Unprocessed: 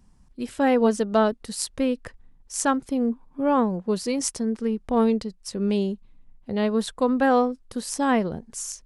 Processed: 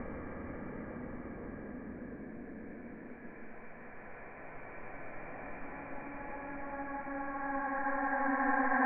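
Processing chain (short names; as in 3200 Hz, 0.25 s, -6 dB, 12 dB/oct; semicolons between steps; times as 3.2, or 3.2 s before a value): half-wave gain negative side -7 dB; auto swell 0.22 s; Paulstretch 26×, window 0.25 s, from 7.72; dynamic EQ 370 Hz, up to -7 dB, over -51 dBFS, Q 0.88; rippled Chebyshev low-pass 2400 Hz, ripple 6 dB; gain +9 dB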